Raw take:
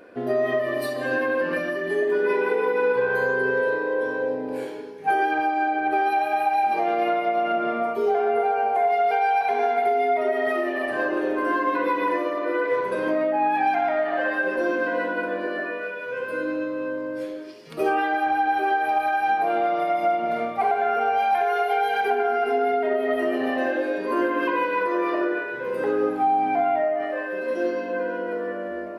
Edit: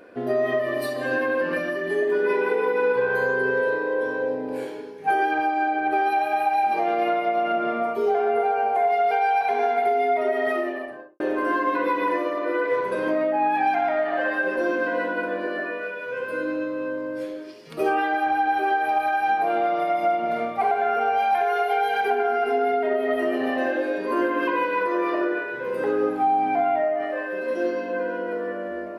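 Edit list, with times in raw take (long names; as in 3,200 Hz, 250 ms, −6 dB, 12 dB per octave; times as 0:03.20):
0:10.50–0:11.20: fade out and dull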